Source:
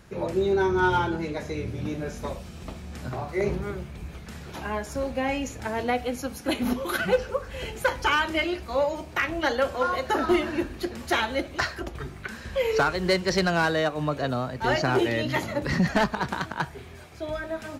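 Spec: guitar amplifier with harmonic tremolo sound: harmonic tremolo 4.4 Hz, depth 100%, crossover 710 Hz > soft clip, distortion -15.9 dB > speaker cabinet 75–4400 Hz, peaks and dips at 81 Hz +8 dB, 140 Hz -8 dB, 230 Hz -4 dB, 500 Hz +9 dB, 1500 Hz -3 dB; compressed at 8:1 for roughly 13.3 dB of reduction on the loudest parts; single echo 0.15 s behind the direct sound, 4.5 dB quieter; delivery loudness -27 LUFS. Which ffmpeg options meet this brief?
-filter_complex "[0:a]acompressor=threshold=-32dB:ratio=8,aecho=1:1:150:0.596,acrossover=split=710[a][b];[a]aeval=exprs='val(0)*(1-1/2+1/2*cos(2*PI*4.4*n/s))':c=same[c];[b]aeval=exprs='val(0)*(1-1/2-1/2*cos(2*PI*4.4*n/s))':c=same[d];[c][d]amix=inputs=2:normalize=0,asoftclip=threshold=-33dB,highpass=75,equalizer=f=81:t=q:w=4:g=8,equalizer=f=140:t=q:w=4:g=-8,equalizer=f=230:t=q:w=4:g=-4,equalizer=f=500:t=q:w=4:g=9,equalizer=f=1.5k:t=q:w=4:g=-3,lowpass=f=4.4k:w=0.5412,lowpass=f=4.4k:w=1.3066,volume=13.5dB"

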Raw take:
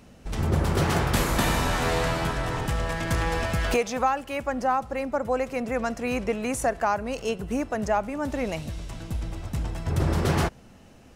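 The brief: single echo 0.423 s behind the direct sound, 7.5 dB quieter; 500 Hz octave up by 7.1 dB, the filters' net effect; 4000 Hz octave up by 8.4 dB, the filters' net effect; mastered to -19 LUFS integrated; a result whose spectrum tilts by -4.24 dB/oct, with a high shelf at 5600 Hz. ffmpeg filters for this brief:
-af "equalizer=f=500:t=o:g=8,equalizer=f=4k:t=o:g=8,highshelf=f=5.6k:g=7,aecho=1:1:423:0.422,volume=3dB"

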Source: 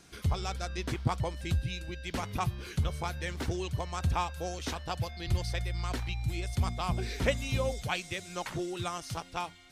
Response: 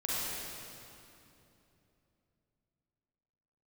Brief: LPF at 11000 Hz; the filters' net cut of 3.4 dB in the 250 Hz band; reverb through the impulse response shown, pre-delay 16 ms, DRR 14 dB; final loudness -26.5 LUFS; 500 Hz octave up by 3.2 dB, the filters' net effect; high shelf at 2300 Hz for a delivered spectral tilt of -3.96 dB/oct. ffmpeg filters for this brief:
-filter_complex "[0:a]lowpass=11k,equalizer=f=250:t=o:g=-8.5,equalizer=f=500:t=o:g=5.5,highshelf=f=2.3k:g=6,asplit=2[a][b];[1:a]atrim=start_sample=2205,adelay=16[c];[b][c]afir=irnorm=-1:irlink=0,volume=-20.5dB[d];[a][d]amix=inputs=2:normalize=0,volume=6dB"

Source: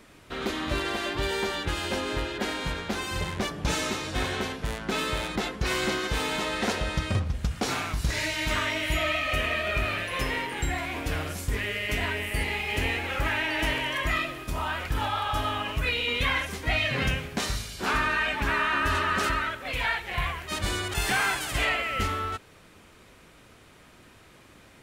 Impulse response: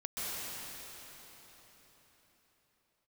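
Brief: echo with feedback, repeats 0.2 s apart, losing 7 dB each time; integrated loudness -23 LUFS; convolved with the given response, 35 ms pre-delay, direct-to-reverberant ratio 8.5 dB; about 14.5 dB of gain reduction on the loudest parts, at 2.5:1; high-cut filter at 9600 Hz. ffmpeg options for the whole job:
-filter_complex "[0:a]lowpass=9.6k,acompressor=threshold=-46dB:ratio=2.5,aecho=1:1:200|400|600|800|1000:0.447|0.201|0.0905|0.0407|0.0183,asplit=2[a][b];[1:a]atrim=start_sample=2205,adelay=35[c];[b][c]afir=irnorm=-1:irlink=0,volume=-13.5dB[d];[a][d]amix=inputs=2:normalize=0,volume=17dB"

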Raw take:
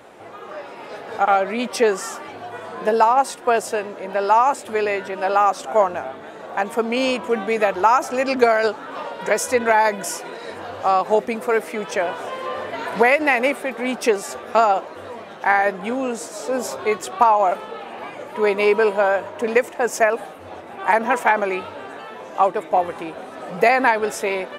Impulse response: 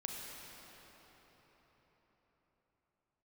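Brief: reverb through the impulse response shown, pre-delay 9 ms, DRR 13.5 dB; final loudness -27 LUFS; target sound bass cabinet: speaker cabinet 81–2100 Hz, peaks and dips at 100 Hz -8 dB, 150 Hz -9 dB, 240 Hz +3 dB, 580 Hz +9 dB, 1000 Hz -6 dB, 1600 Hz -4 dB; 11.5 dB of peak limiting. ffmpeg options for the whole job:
-filter_complex "[0:a]alimiter=limit=-13.5dB:level=0:latency=1,asplit=2[a][b];[1:a]atrim=start_sample=2205,adelay=9[c];[b][c]afir=irnorm=-1:irlink=0,volume=-13.5dB[d];[a][d]amix=inputs=2:normalize=0,highpass=f=81:w=0.5412,highpass=f=81:w=1.3066,equalizer=f=100:t=q:w=4:g=-8,equalizer=f=150:t=q:w=4:g=-9,equalizer=f=240:t=q:w=4:g=3,equalizer=f=580:t=q:w=4:g=9,equalizer=f=1k:t=q:w=4:g=-6,equalizer=f=1.6k:t=q:w=4:g=-4,lowpass=f=2.1k:w=0.5412,lowpass=f=2.1k:w=1.3066,volume=-4dB"

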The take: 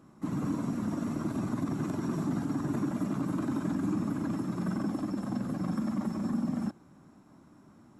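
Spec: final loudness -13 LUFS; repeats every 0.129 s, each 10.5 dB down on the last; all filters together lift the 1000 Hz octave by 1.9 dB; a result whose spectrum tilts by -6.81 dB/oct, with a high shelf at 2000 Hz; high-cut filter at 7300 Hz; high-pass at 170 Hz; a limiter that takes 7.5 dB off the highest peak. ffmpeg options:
-af "highpass=170,lowpass=7.3k,equalizer=f=1k:t=o:g=4.5,highshelf=f=2k:g=-9,alimiter=level_in=4.5dB:limit=-24dB:level=0:latency=1,volume=-4.5dB,aecho=1:1:129|258|387:0.299|0.0896|0.0269,volume=23.5dB"

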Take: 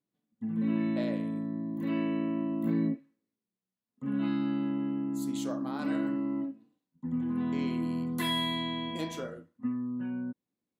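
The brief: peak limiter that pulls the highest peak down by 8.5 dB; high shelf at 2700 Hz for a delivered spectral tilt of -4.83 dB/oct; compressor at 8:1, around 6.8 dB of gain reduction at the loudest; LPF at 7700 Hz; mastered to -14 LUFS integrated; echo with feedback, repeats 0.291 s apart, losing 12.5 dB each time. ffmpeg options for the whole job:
-af "lowpass=7.7k,highshelf=f=2.7k:g=7.5,acompressor=threshold=-31dB:ratio=8,alimiter=level_in=6.5dB:limit=-24dB:level=0:latency=1,volume=-6.5dB,aecho=1:1:291|582|873:0.237|0.0569|0.0137,volume=24dB"

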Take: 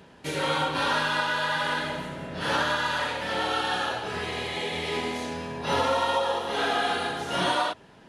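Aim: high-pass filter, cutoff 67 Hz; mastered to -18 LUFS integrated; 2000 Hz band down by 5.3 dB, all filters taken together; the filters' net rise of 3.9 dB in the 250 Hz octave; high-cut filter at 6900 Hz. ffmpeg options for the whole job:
-af "highpass=67,lowpass=6.9k,equalizer=f=250:t=o:g=5,equalizer=f=2k:t=o:g=-7.5,volume=10.5dB"

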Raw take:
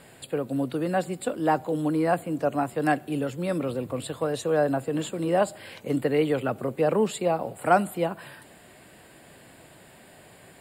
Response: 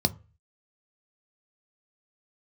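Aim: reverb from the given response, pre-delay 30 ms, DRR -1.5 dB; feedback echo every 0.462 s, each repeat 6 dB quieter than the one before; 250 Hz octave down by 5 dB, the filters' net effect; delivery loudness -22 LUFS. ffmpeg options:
-filter_complex "[0:a]equalizer=f=250:t=o:g=-7,aecho=1:1:462|924|1386|1848|2310|2772:0.501|0.251|0.125|0.0626|0.0313|0.0157,asplit=2[a][b];[1:a]atrim=start_sample=2205,adelay=30[c];[b][c]afir=irnorm=-1:irlink=0,volume=-8dB[d];[a][d]amix=inputs=2:normalize=0,volume=-2dB"

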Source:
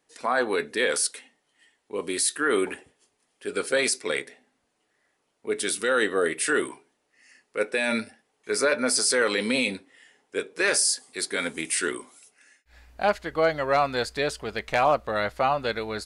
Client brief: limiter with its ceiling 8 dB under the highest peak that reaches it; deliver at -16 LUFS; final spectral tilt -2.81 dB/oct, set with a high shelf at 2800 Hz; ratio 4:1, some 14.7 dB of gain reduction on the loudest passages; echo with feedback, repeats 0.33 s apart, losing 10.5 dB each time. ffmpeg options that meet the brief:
-af "highshelf=f=2.8k:g=-8,acompressor=threshold=-37dB:ratio=4,alimiter=level_in=6dB:limit=-24dB:level=0:latency=1,volume=-6dB,aecho=1:1:330|660|990:0.299|0.0896|0.0269,volume=25.5dB"

